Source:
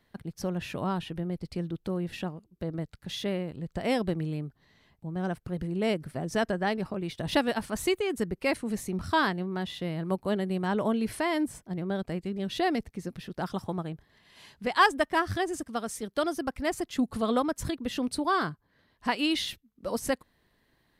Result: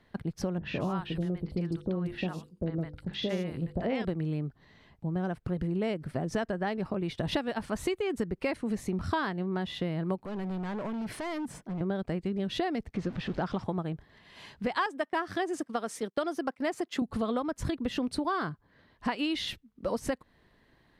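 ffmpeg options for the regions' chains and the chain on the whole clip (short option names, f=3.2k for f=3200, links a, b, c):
-filter_complex "[0:a]asettb=1/sr,asplit=3[a][b][c];[a]atrim=end=0.584[d];[b]atrim=start=0.58:end=4.05,asetpts=PTS-STARTPTS,afade=t=in:d=0.004:c=qsin,afade=t=out:st=3.466:d=0.004:c=qsin,bandreject=f=50:t=h:w=6,bandreject=f=100:t=h:w=6,bandreject=f=150:t=h:w=6,bandreject=f=200:t=h:w=6,bandreject=f=250:t=h:w=6,bandreject=f=300:t=h:w=6,bandreject=f=350:t=h:w=6,bandreject=f=400:t=h:w=6,bandreject=f=450:t=h:w=6,bandreject=f=500:t=h:w=6,acrossover=split=820|5000[e][f][g];[f]adelay=50[h];[g]adelay=200[i];[e][h][i]amix=inputs=3:normalize=0,atrim=end_sample=153027[j];[c]atrim=start=4.046[k];[d][j]acrossfade=d=0.004:c1=hsin:c2=qsin[l];[l][k]acrossfade=d=0.004:c1=qsin:c2=hsin,asettb=1/sr,asplit=3[m][n][o];[m]atrim=end=10.214[p];[n]atrim=start=10.21:end=11.81,asetpts=PTS-STARTPTS,afade=t=in:d=0.004:c=qsin,afade=t=out:st=1.596:d=0.004:c=qsin,acompressor=threshold=-35dB:ratio=3:attack=3.2:release=140:knee=1:detection=peak,lowshelf=f=120:t=q:w=1.5:g=-7,asoftclip=type=hard:threshold=-37.5dB[q];[o]atrim=start=11.806[r];[p][q]acrossfade=d=0.004:c1=hsin:c2=qsin[s];[s][r]acrossfade=d=0.004:c1=qsin:c2=hsin,asettb=1/sr,asplit=3[t][u][v];[t]atrim=end=12.944[w];[u]atrim=start=12.94:end=13.64,asetpts=PTS-STARTPTS,afade=t=in:d=0.004:c=qsin,afade=t=out:st=0.696:d=0.004:c=qsin,aeval=exprs='val(0)+0.5*0.0075*sgn(val(0))':c=same,lowpass=4.8k[x];[v]atrim=start=13.636[y];[w][x]acrossfade=d=0.004:c1=hsin:c2=qsin[z];[z][y]acrossfade=d=0.004:c1=qsin:c2=hsin,asettb=1/sr,asplit=3[aa][ab][ac];[aa]atrim=end=14.864[ad];[ab]atrim=start=14.86:end=17.02,asetpts=PTS-STARTPTS,afade=t=in:d=0.004:c=qsin,afade=t=out:st=2.156:d=0.004:c=qsin,highpass=250,agate=range=-17dB:threshold=-46dB:ratio=16:release=100:detection=peak[ae];[ac]atrim=start=17.016[af];[ad][ae]acrossfade=d=0.004:c1=hsin:c2=qsin[ag];[ag][af]acrossfade=d=0.004:c1=qsin:c2=hsin,aemphasis=mode=reproduction:type=50kf,acompressor=threshold=-33dB:ratio=6,volume=5.5dB"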